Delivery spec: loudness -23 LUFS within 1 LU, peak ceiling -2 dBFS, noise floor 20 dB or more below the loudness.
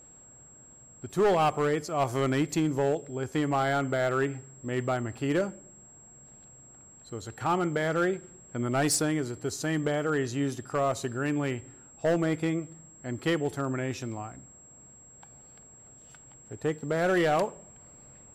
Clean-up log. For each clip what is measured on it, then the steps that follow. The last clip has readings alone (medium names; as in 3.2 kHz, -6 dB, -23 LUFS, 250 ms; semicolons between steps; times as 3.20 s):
clipped samples 1.2%; clipping level -19.5 dBFS; steady tone 7.6 kHz; tone level -51 dBFS; loudness -29.0 LUFS; peak level -19.5 dBFS; loudness target -23.0 LUFS
-> clip repair -19.5 dBFS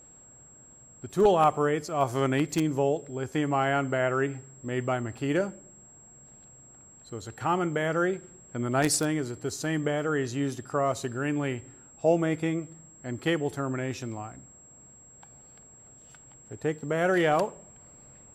clipped samples 0.0%; steady tone 7.6 kHz; tone level -51 dBFS
-> band-stop 7.6 kHz, Q 30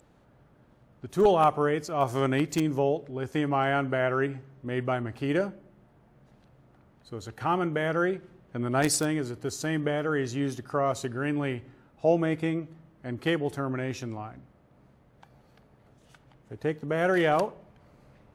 steady tone not found; loudness -28.0 LUFS; peak level -10.5 dBFS; loudness target -23.0 LUFS
-> trim +5 dB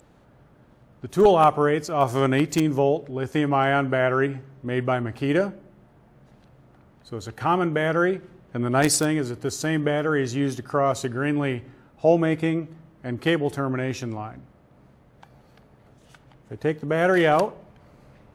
loudness -23.0 LUFS; peak level -5.5 dBFS; noise floor -56 dBFS